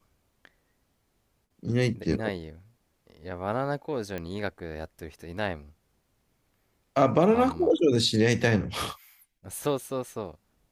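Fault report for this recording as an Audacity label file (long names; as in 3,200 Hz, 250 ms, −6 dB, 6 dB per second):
4.180000	4.180000	click −21 dBFS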